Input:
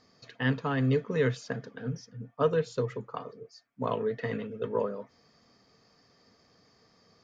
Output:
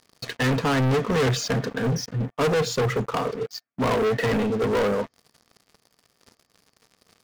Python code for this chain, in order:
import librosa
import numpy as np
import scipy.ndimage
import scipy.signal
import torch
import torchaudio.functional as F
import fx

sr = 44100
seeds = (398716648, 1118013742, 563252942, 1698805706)

y = np.clip(x, -10.0 ** (-18.5 / 20.0), 10.0 ** (-18.5 / 20.0))
y = fx.leveller(y, sr, passes=5)